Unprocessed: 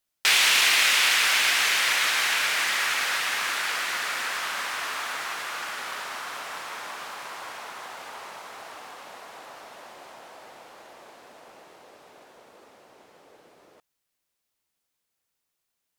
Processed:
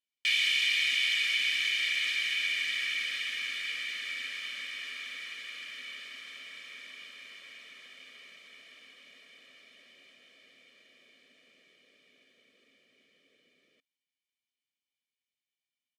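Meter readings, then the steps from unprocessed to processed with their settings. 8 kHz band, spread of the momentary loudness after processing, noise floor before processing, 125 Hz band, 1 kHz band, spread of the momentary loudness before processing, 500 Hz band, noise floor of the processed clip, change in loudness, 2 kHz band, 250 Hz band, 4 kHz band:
-16.5 dB, 21 LU, -81 dBFS, n/a, -25.5 dB, 22 LU, -20.5 dB, under -85 dBFS, -6.5 dB, -7.0 dB, -13.5 dB, -6.0 dB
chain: vowel filter i; high shelf 4300 Hz +11.5 dB; comb 1.7 ms, depth 77%; in parallel at -2 dB: limiter -22 dBFS, peak gain reduction 7 dB; on the sum: gain -4.5 dB

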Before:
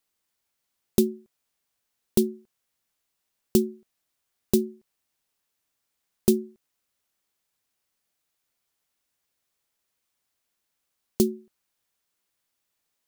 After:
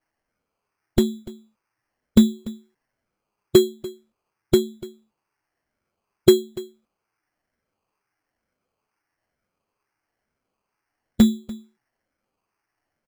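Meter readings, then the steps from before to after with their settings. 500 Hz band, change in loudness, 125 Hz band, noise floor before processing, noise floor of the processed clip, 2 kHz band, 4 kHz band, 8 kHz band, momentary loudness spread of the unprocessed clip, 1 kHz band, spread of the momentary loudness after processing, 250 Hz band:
+6.5 dB, +6.5 dB, +6.0 dB, -80 dBFS, -82 dBFS, n/a, +10.5 dB, +1.5 dB, 17 LU, +9.0 dB, 20 LU, +6.5 dB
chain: moving spectral ripple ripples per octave 0.75, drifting -1.1 Hz, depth 23 dB; low shelf 190 Hz +2.5 dB; envelope flanger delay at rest 9.8 ms, full sweep at -20 dBFS; air absorption 56 m; on a send: echo 0.292 s -19.5 dB; on the sum: sample-and-hold 12×; gain +1.5 dB

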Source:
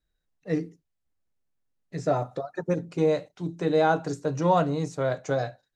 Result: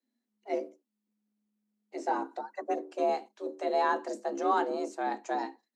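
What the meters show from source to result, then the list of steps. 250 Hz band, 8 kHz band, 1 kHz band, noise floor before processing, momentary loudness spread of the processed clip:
-8.5 dB, n/a, -1.0 dB, -80 dBFS, 11 LU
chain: octaver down 1 oct, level -6 dB; frequency shift +210 Hz; gain -6 dB

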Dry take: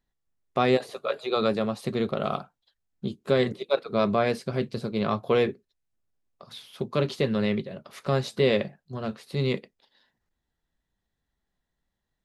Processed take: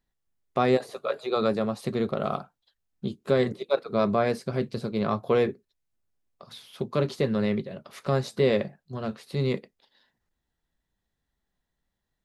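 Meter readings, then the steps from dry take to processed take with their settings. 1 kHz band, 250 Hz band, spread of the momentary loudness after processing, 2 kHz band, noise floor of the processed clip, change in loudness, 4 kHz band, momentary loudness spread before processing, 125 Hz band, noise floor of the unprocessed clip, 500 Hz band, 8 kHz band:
-0.5 dB, 0.0 dB, 12 LU, -2.5 dB, -82 dBFS, -0.5 dB, -4.0 dB, 12 LU, 0.0 dB, -82 dBFS, 0.0 dB, n/a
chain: dynamic EQ 3000 Hz, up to -6 dB, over -46 dBFS, Q 1.5

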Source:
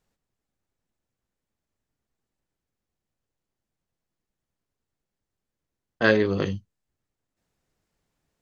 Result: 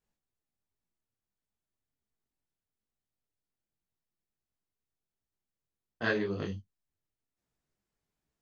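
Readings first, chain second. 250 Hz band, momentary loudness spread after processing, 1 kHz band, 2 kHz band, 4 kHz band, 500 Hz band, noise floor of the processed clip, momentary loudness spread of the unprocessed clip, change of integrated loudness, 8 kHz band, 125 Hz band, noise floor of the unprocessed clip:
-10.0 dB, 10 LU, -9.5 dB, -9.0 dB, -9.5 dB, -11.5 dB, under -85 dBFS, 11 LU, -10.0 dB, n/a, -9.5 dB, under -85 dBFS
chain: notch 530 Hz, Q 14; detuned doubles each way 46 cents; gain -6 dB

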